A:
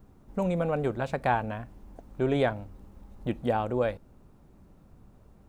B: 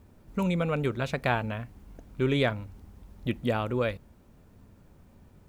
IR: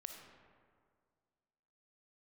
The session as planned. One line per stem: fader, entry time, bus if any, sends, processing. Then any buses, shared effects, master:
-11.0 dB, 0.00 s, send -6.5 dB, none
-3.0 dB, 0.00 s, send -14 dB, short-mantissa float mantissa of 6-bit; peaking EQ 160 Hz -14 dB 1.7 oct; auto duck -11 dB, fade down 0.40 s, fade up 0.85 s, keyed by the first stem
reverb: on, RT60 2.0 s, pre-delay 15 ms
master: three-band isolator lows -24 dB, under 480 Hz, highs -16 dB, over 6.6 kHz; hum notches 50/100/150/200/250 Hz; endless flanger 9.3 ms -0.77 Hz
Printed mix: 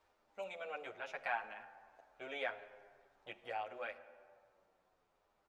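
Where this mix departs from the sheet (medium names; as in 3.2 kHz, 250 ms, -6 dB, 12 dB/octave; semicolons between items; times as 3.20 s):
stem A: send -6.5 dB -> -0.5 dB; stem B: polarity flipped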